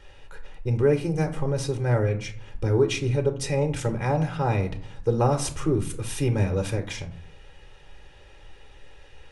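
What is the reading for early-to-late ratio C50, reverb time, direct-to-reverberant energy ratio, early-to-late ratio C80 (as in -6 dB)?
13.5 dB, 0.55 s, 6.5 dB, 17.5 dB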